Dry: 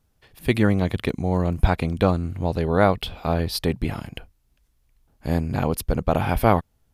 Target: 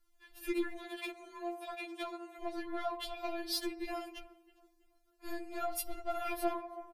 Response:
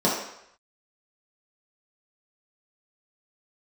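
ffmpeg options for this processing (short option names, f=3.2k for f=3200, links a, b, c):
-filter_complex "[0:a]asplit=2[a][b];[1:a]atrim=start_sample=2205,adelay=46[c];[b][c]afir=irnorm=-1:irlink=0,volume=-35dB[d];[a][d]amix=inputs=2:normalize=0,acompressor=threshold=-21dB:ratio=12,asettb=1/sr,asplit=3[e][f][g];[e]atrim=end=0.764[h];[f]atrim=start=0.76:end=2.42,asetpts=PTS-STARTPTS,afade=t=in:d=0.004:c=qsin,afade=t=out:st=1.656:d=0.004:c=qsin,highpass=480[i];[g]atrim=start=2.416[j];[h][i]acrossfade=d=0.004:c1=hsin:c2=qsin[k];[k][j]acrossfade=d=0.004:c1=qsin:c2=hsin,asplit=2[l][m];[m]adelay=327,lowpass=f=1.9k:p=1,volume=-20dB,asplit=2[n][o];[o]adelay=327,lowpass=f=1.9k:p=1,volume=0.41,asplit=2[p][q];[q]adelay=327,lowpass=f=1.9k:p=1,volume=0.41[r];[l][n][p][r]amix=inputs=4:normalize=0,asoftclip=type=tanh:threshold=-20.5dB,asettb=1/sr,asplit=3[s][t][u];[s]atrim=end=5.604[v];[t]atrim=start=5.6:end=6.29,asetpts=PTS-STARTPTS,afade=t=in:d=0.004:c=qsin,afade=t=out:st=0.686:d=0.004:c=qsin,aecho=1:1:7.3:0.75,atrim=end_sample=30429[w];[u]atrim=start=6.286[x];[v][w]acrossfade=d=0.004:c1=hsin:c2=qsin[y];[y][x]acrossfade=d=0.004:c1=qsin:c2=hsin,afftfilt=real='re*4*eq(mod(b,16),0)':imag='im*4*eq(mod(b,16),0)':win_size=2048:overlap=0.75,volume=-3dB"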